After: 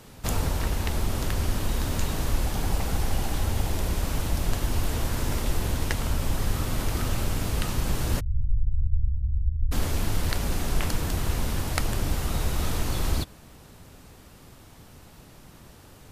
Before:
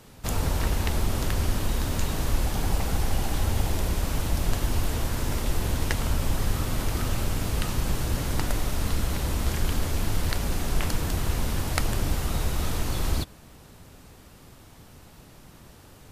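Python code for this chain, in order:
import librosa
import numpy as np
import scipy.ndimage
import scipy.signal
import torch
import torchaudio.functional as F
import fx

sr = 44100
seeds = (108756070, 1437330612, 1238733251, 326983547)

y = fx.cheby2_lowpass(x, sr, hz=610.0, order=4, stop_db=80, at=(8.19, 9.71), fade=0.02)
y = fx.rider(y, sr, range_db=10, speed_s=0.5)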